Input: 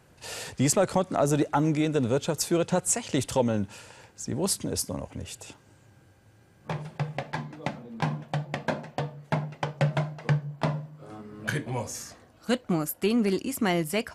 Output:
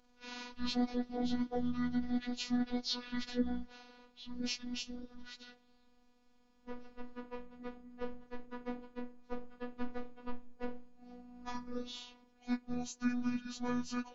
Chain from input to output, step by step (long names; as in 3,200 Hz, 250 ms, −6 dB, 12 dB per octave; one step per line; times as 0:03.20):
phase-vocoder pitch shift without resampling −10.5 semitones
phases set to zero 245 Hz
harmonic and percussive parts rebalanced percussive −11 dB
level −5 dB